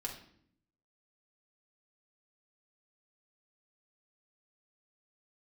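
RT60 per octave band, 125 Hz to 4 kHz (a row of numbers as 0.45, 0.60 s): 1.0, 0.95, 0.70, 0.55, 0.55, 0.50 s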